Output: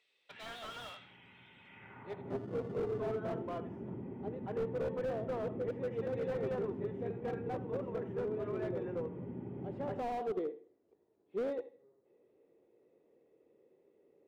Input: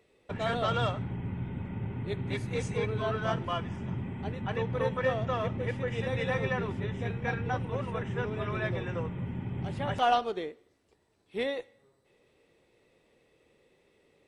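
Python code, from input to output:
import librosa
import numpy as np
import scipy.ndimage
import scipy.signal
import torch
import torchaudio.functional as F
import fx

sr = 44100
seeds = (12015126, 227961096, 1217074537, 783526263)

p1 = fx.sample_hold(x, sr, seeds[0], rate_hz=1600.0, jitter_pct=0, at=(2.3, 3.0))
p2 = fx.filter_sweep_bandpass(p1, sr, from_hz=3500.0, to_hz=390.0, start_s=1.64, end_s=2.39, q=1.6)
p3 = p2 + fx.echo_feedback(p2, sr, ms=80, feedback_pct=25, wet_db=-15.0, dry=0)
p4 = fx.slew_limit(p3, sr, full_power_hz=9.9)
y = p4 * 10.0 ** (1.0 / 20.0)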